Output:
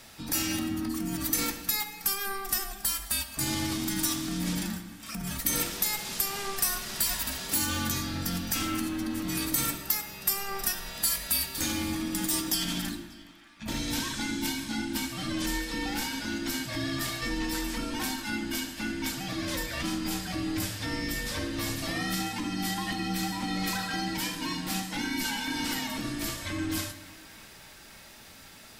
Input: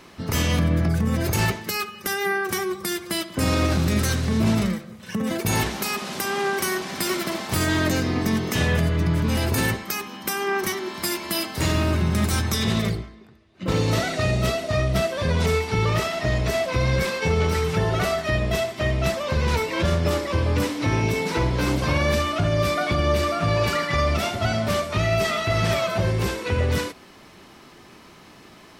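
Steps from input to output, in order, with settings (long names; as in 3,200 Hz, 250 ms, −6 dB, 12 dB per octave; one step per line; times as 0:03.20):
first-order pre-emphasis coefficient 0.8
mains-hum notches 50/100/150/200/250/300/350 Hz
in parallel at +0.5 dB: downward compressor, threshold −45 dBFS, peak gain reduction 20.5 dB
on the sum: frequency shifter −400 Hz
feedback echo with a band-pass in the loop 589 ms, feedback 79%, band-pass 1,700 Hz, level −19 dB
on a send at −10.5 dB: convolution reverb RT60 1.2 s, pre-delay 12 ms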